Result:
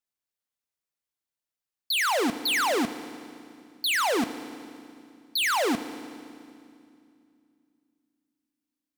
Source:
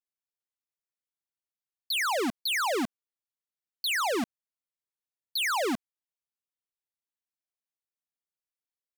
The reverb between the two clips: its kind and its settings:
feedback delay network reverb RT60 2.4 s, low-frequency decay 1.45×, high-frequency decay 0.95×, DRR 11.5 dB
level +3 dB

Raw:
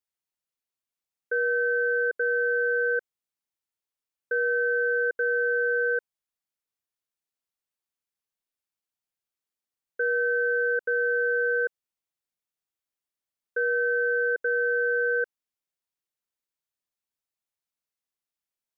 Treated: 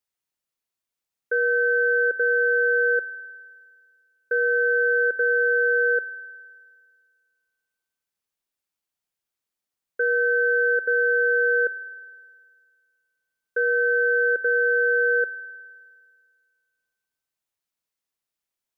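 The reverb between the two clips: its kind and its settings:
spring reverb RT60 1.9 s, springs 51 ms, chirp 30 ms, DRR 17.5 dB
level +3.5 dB

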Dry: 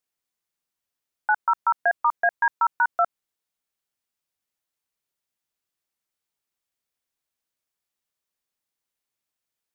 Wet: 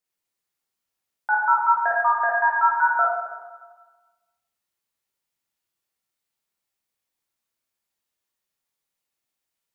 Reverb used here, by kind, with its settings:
dense smooth reverb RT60 1.3 s, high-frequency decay 0.9×, DRR −5 dB
level −3.5 dB

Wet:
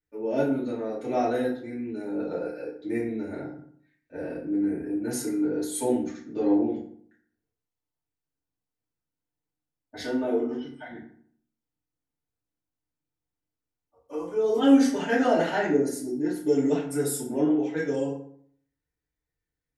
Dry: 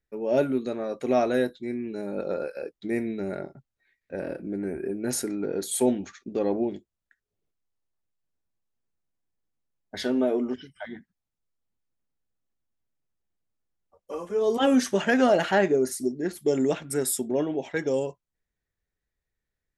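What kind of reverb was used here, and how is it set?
feedback delay network reverb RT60 0.59 s, low-frequency decay 1.2×, high-frequency decay 0.6×, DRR −9.5 dB
level −12 dB

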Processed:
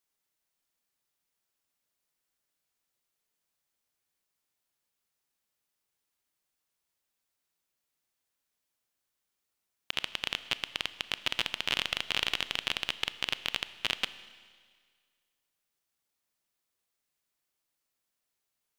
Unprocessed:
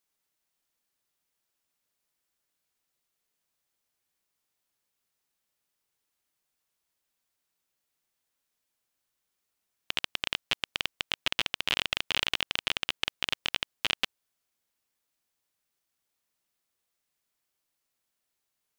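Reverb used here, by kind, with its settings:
four-comb reverb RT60 1.8 s, combs from 26 ms, DRR 14 dB
level −2 dB

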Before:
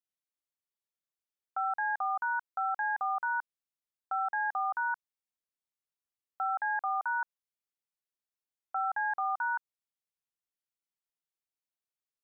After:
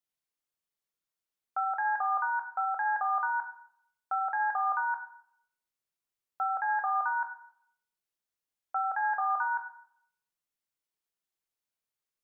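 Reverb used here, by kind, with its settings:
dense smooth reverb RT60 0.67 s, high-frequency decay 0.75×, DRR 5 dB
level +1.5 dB

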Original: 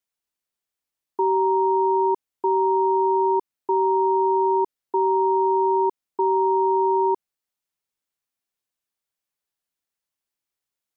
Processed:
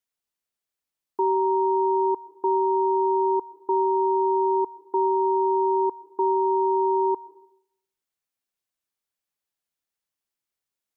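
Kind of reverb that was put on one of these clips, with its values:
comb and all-pass reverb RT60 0.71 s, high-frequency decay 1×, pre-delay 80 ms, DRR 18.5 dB
level −1.5 dB

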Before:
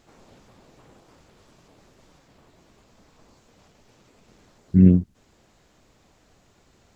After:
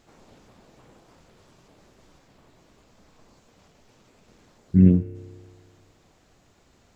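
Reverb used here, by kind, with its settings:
spring reverb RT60 1.9 s, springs 31 ms, chirp 60 ms, DRR 11 dB
level −1 dB

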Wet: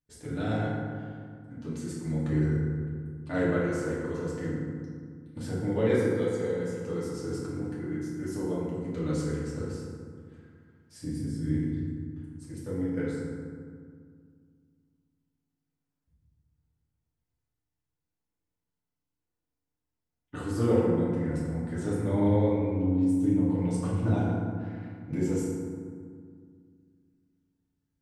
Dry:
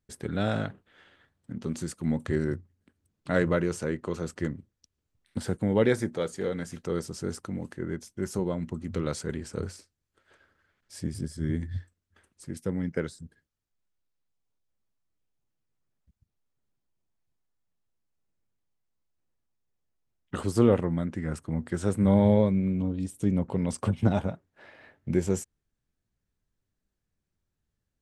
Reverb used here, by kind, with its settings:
feedback delay network reverb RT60 2 s, low-frequency decay 1.4×, high-frequency decay 0.45×, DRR −8.5 dB
level −11.5 dB

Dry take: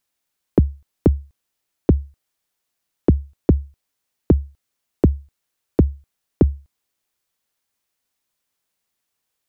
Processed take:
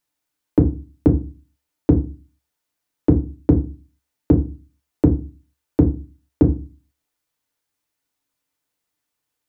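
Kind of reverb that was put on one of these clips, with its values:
feedback delay network reverb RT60 0.31 s, low-frequency decay 1.4×, high-frequency decay 0.35×, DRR 2 dB
level −3 dB

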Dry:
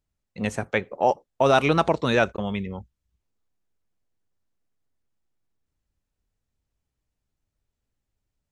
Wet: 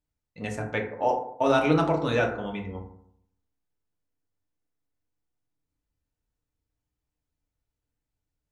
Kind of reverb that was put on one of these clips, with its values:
feedback delay network reverb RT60 0.69 s, low-frequency decay 1.1×, high-frequency decay 0.4×, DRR 0 dB
level −7 dB

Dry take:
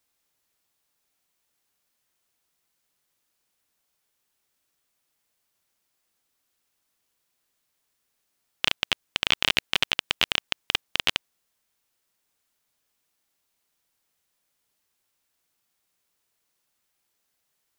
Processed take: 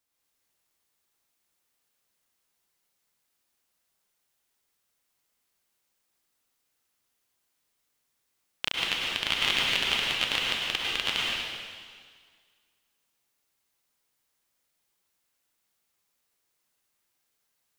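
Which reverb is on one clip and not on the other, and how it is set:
dense smooth reverb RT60 1.8 s, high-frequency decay 1×, pre-delay 90 ms, DRR −4.5 dB
level −6.5 dB

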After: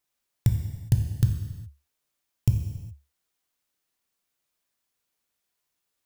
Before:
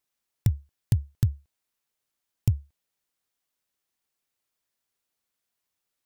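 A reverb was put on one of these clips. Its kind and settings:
reverb whose tail is shaped and stops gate 440 ms falling, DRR 3.5 dB
level +1 dB

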